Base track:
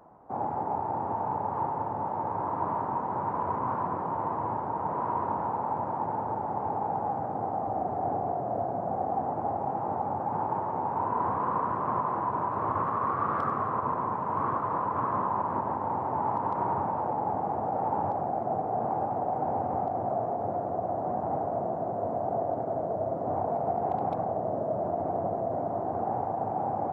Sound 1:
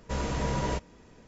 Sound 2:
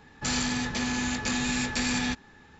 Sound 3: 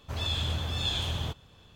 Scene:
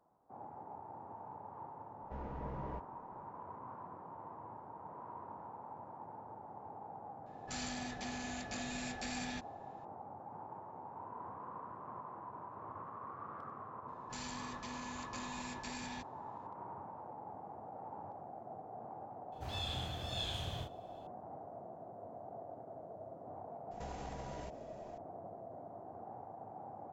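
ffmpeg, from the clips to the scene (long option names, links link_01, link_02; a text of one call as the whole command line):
ffmpeg -i bed.wav -i cue0.wav -i cue1.wav -i cue2.wav -filter_complex "[1:a]asplit=2[link_01][link_02];[2:a]asplit=2[link_03][link_04];[0:a]volume=-19dB[link_05];[link_01]lowpass=1300[link_06];[3:a]asplit=2[link_07][link_08];[link_08]adelay=32,volume=-3dB[link_09];[link_07][link_09]amix=inputs=2:normalize=0[link_10];[link_02]acompressor=threshold=-39dB:ratio=6:attack=3.2:release=140:knee=1:detection=peak[link_11];[link_06]atrim=end=1.27,asetpts=PTS-STARTPTS,volume=-14dB,afade=type=in:duration=0.004:curve=hsin,afade=type=out:start_time=1.266:duration=0.004:curve=hsin,adelay=2010[link_12];[link_03]atrim=end=2.59,asetpts=PTS-STARTPTS,volume=-14.5dB,afade=type=in:duration=0.004:curve=hsin,afade=type=out:start_time=2.586:duration=0.004:curve=hsin,adelay=7260[link_13];[link_04]atrim=end=2.59,asetpts=PTS-STARTPTS,volume=-18dB,afade=type=in:duration=0.004:curve=hsin,afade=type=out:start_time=2.586:duration=0.004:curve=hsin,adelay=13880[link_14];[link_10]atrim=end=1.75,asetpts=PTS-STARTPTS,volume=-11dB,afade=type=in:duration=0.004:curve=hsin,afade=type=out:start_time=1.746:duration=0.004:curve=hsin,adelay=19320[link_15];[link_11]atrim=end=1.27,asetpts=PTS-STARTPTS,volume=-5dB,afade=type=in:duration=0.004:curve=hsin,afade=type=out:start_time=1.266:duration=0.004:curve=hsin,adelay=23710[link_16];[link_05][link_12][link_13][link_14][link_15][link_16]amix=inputs=6:normalize=0" out.wav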